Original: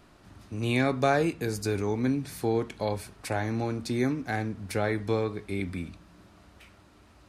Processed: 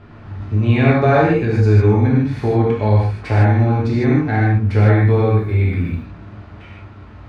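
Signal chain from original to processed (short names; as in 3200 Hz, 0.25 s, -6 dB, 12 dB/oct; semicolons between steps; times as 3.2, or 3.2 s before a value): LPF 2300 Hz 12 dB/oct; bell 100 Hz +13.5 dB 0.49 oct; in parallel at -0.5 dB: compressor, threshold -34 dBFS, peak gain reduction 15 dB; 4.94–5.9 on the sum: requantised 12-bit, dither none; non-linear reverb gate 0.18 s flat, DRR -5.5 dB; gain +3 dB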